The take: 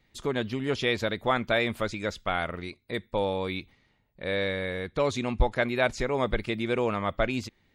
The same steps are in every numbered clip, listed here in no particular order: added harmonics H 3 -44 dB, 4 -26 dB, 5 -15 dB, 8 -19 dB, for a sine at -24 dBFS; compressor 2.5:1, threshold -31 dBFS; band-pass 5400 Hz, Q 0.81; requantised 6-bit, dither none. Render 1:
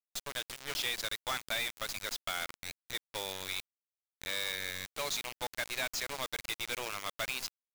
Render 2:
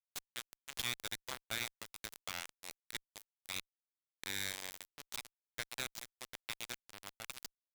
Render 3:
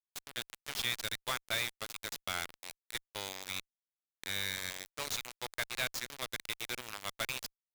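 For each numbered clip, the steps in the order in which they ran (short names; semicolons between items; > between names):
band-pass > added harmonics > requantised > compressor; compressor > band-pass > requantised > added harmonics; band-pass > compressor > requantised > added harmonics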